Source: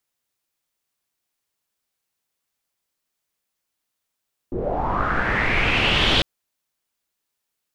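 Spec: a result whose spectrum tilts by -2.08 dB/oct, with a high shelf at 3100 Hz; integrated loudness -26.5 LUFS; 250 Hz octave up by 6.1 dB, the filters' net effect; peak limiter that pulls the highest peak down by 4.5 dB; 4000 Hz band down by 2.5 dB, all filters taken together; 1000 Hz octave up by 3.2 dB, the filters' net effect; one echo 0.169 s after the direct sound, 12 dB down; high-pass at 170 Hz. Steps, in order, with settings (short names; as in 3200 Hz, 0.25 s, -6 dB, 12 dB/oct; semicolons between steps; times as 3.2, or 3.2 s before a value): HPF 170 Hz; bell 250 Hz +9 dB; bell 1000 Hz +3.5 dB; high shelf 3100 Hz +3.5 dB; bell 4000 Hz -6.5 dB; limiter -11.5 dBFS; echo 0.169 s -12 dB; gain -5.5 dB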